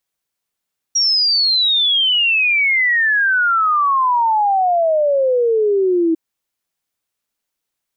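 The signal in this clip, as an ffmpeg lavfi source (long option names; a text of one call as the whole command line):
ffmpeg -f lavfi -i "aevalsrc='0.251*clip(min(t,5.2-t)/0.01,0,1)*sin(2*PI*5700*5.2/log(320/5700)*(exp(log(320/5700)*t/5.2)-1))':duration=5.2:sample_rate=44100" out.wav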